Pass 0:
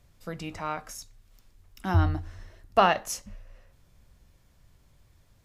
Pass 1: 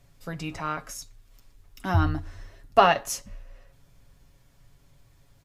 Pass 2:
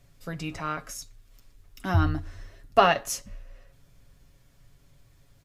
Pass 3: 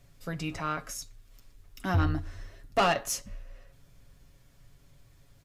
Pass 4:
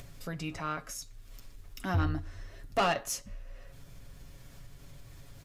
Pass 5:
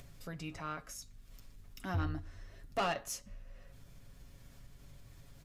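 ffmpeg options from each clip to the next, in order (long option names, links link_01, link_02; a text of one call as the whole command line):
ffmpeg -i in.wav -af "aecho=1:1:7.2:0.54,volume=1.5dB" out.wav
ffmpeg -i in.wav -af "equalizer=frequency=890:width_type=o:width=0.48:gain=-4" out.wav
ffmpeg -i in.wav -af "asoftclip=type=tanh:threshold=-18.5dB" out.wav
ffmpeg -i in.wav -af "acompressor=mode=upward:threshold=-34dB:ratio=2.5,volume=-3dB" out.wav
ffmpeg -i in.wav -af "aeval=exprs='val(0)+0.00158*(sin(2*PI*50*n/s)+sin(2*PI*2*50*n/s)/2+sin(2*PI*3*50*n/s)/3+sin(2*PI*4*50*n/s)/4+sin(2*PI*5*50*n/s)/5)':channel_layout=same,volume=-6dB" out.wav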